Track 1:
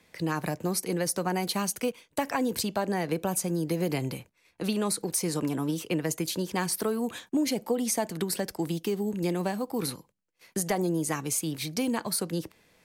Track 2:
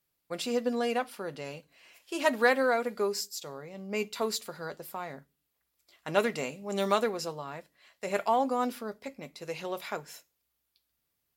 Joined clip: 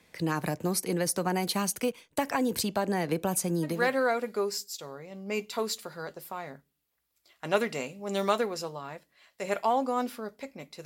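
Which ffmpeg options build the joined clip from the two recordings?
-filter_complex "[0:a]apad=whole_dur=10.85,atrim=end=10.85,atrim=end=3.95,asetpts=PTS-STARTPTS[a];[1:a]atrim=start=2.24:end=9.48,asetpts=PTS-STARTPTS[b];[a][b]acrossfade=d=0.34:c1=tri:c2=tri"

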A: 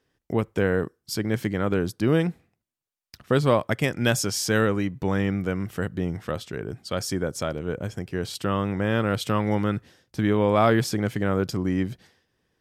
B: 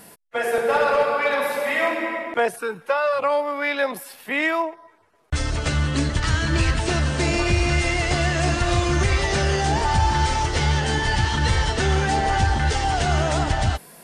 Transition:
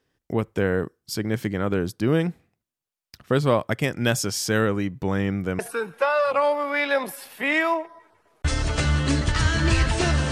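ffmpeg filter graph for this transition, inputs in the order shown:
-filter_complex "[0:a]apad=whole_dur=10.31,atrim=end=10.31,atrim=end=5.592[a];[1:a]atrim=start=2.468:end=7.19[b];[a][b]acrossfade=d=0.004:c1=hsin:c2=hsin"

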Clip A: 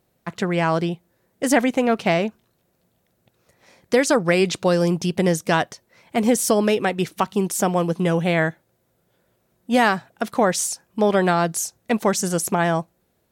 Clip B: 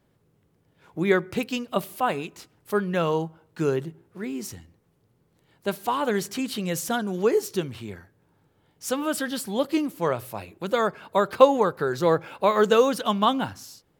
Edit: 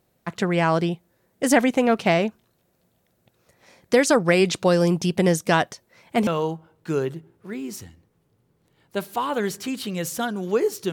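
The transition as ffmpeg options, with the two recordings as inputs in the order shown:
-filter_complex "[0:a]apad=whole_dur=10.92,atrim=end=10.92,atrim=end=6.272[a];[1:a]atrim=start=2.978:end=7.63[b];[a][b]acrossfade=d=0.004:c1=hsin:c2=hsin"

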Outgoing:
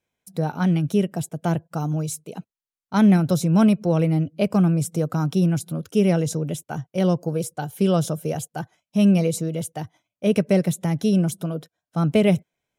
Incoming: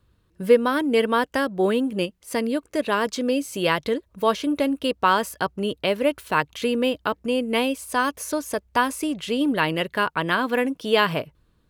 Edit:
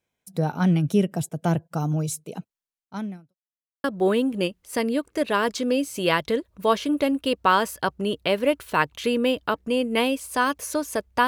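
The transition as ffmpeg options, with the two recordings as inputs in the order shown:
-filter_complex "[0:a]apad=whole_dur=11.27,atrim=end=11.27,asplit=2[a][b];[a]atrim=end=3.35,asetpts=PTS-STARTPTS,afade=t=out:st=2.58:d=0.77:c=qua[c];[b]atrim=start=3.35:end=3.84,asetpts=PTS-STARTPTS,volume=0[d];[1:a]atrim=start=1.42:end=8.85,asetpts=PTS-STARTPTS,afade=t=in:d=0.004:c=hsin[e];[c][d][e]concat=n=3:v=0:a=1"

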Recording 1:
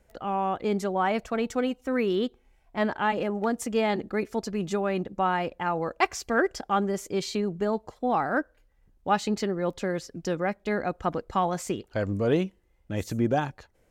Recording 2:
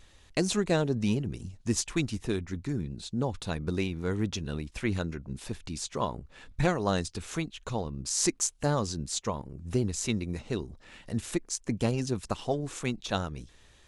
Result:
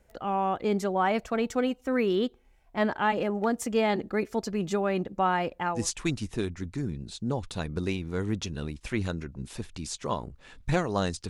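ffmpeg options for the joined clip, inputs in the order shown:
-filter_complex "[0:a]apad=whole_dur=11.29,atrim=end=11.29,atrim=end=5.88,asetpts=PTS-STARTPTS[a];[1:a]atrim=start=1.55:end=7.2,asetpts=PTS-STARTPTS[b];[a][b]acrossfade=d=0.24:c1=tri:c2=tri"

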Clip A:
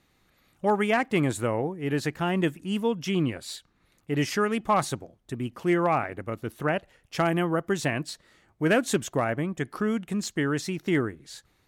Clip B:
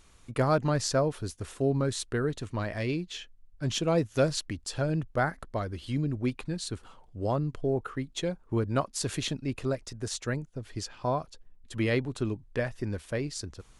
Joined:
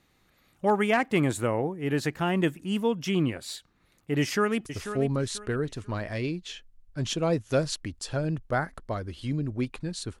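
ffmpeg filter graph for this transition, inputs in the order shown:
-filter_complex "[0:a]apad=whole_dur=10.2,atrim=end=10.2,atrim=end=4.662[a];[1:a]atrim=start=1.308:end=6.85[b];[a][b]acrossfade=d=0.004:c1=hsin:c2=hsin,asplit=2[c][d];[d]afade=t=in:st=4.2:d=0.01,afade=t=out:st=4.66:d=0.01,aecho=0:1:490|980|1470:0.298538|0.0895615|0.0268684[e];[c][e]amix=inputs=2:normalize=0"

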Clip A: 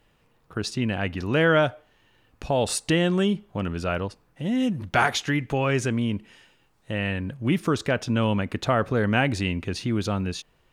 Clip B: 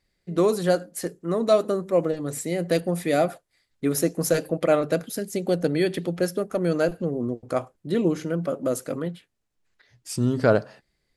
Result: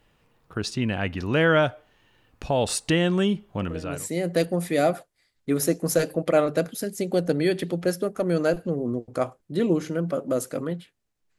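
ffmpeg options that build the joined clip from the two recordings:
-filter_complex "[0:a]apad=whole_dur=11.38,atrim=end=11.38,atrim=end=4.1,asetpts=PTS-STARTPTS[a];[1:a]atrim=start=1.95:end=9.73,asetpts=PTS-STARTPTS[b];[a][b]acrossfade=d=0.5:c1=tri:c2=tri"

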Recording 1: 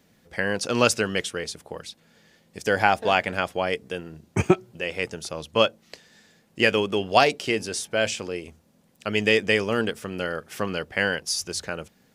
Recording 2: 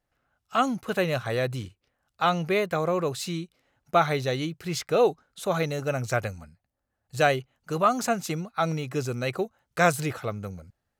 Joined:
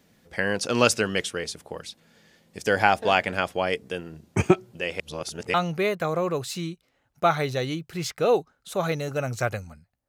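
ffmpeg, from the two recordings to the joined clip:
-filter_complex "[0:a]apad=whole_dur=10.08,atrim=end=10.08,asplit=2[a][b];[a]atrim=end=5.002[c];[b]atrim=start=4.998:end=5.542,asetpts=PTS-STARTPTS,areverse[d];[1:a]atrim=start=2.248:end=6.79[e];[c][d]acrossfade=d=0.004:c1=hsin:c2=hsin[f];[f][e]acrossfade=d=0.004:c1=hsin:c2=hsin"

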